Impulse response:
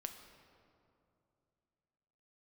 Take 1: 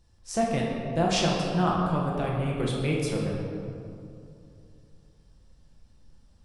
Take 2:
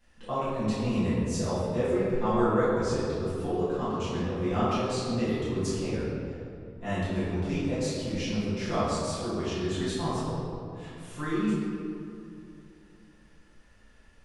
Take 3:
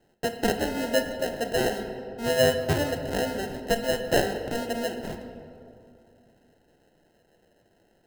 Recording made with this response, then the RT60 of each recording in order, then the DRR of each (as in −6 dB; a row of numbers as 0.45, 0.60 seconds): 3; 2.7, 2.6, 2.7 seconds; −3.5, −13.0, 5.5 decibels